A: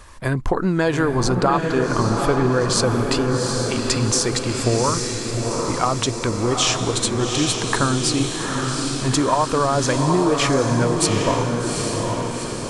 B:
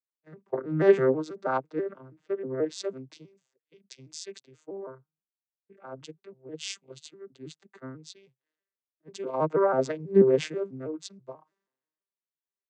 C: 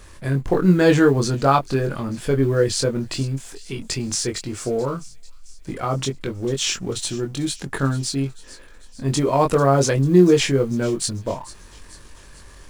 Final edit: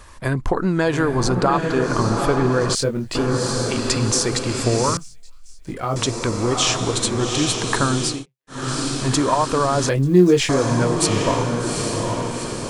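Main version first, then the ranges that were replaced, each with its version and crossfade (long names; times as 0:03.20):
A
0:02.75–0:03.15: punch in from C
0:04.97–0:05.96: punch in from C
0:08.14–0:08.59: punch in from B, crossfade 0.24 s
0:09.89–0:10.49: punch in from C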